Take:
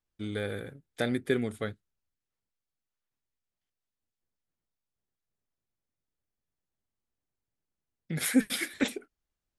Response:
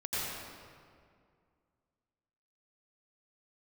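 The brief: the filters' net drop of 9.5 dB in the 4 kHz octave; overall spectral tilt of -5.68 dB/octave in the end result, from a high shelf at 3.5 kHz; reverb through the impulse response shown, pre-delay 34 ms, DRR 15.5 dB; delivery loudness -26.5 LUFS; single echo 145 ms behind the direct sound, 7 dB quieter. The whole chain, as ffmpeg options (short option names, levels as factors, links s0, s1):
-filter_complex "[0:a]highshelf=f=3500:g=-5,equalizer=f=4000:t=o:g=-8.5,aecho=1:1:145:0.447,asplit=2[s0][s1];[1:a]atrim=start_sample=2205,adelay=34[s2];[s1][s2]afir=irnorm=-1:irlink=0,volume=0.0841[s3];[s0][s3]amix=inputs=2:normalize=0,volume=1.88"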